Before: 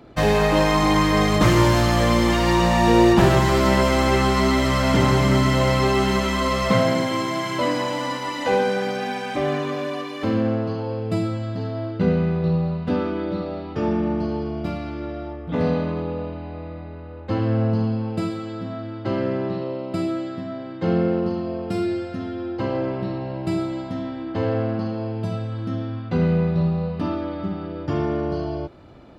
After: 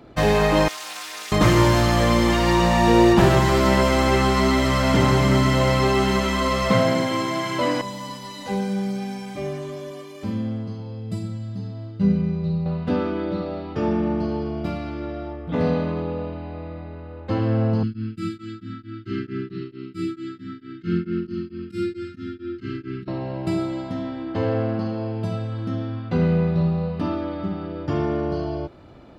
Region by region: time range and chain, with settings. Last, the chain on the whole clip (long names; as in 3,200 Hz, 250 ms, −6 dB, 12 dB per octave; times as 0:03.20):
0:00.68–0:01.32: high-pass filter 310 Hz + first difference + highs frequency-modulated by the lows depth 0.24 ms
0:07.81–0:12.66: bass and treble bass +14 dB, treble +11 dB + mains-hum notches 60/120/180/240/300/360/420/480/540 Hz + tuned comb filter 200 Hz, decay 0.24 s, mix 90%
0:17.83–0:23.08: Chebyshev band-stop filter 380–1,300 Hz, order 4 + tremolo along a rectified sine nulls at 4.5 Hz
whole clip: no processing